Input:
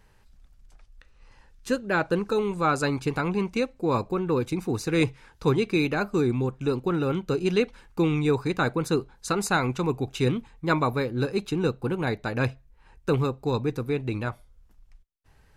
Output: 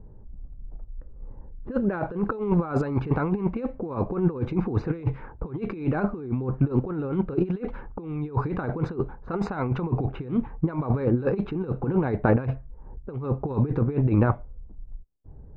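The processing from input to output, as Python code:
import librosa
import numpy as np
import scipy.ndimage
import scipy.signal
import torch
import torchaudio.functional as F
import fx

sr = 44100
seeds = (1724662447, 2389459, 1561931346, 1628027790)

y = fx.env_lowpass(x, sr, base_hz=390.0, full_db=-20.0)
y = scipy.signal.sosfilt(scipy.signal.butter(2, 1200.0, 'lowpass', fs=sr, output='sos'), y)
y = fx.over_compress(y, sr, threshold_db=-31.0, ratio=-0.5)
y = F.gain(torch.from_numpy(y), 7.5).numpy()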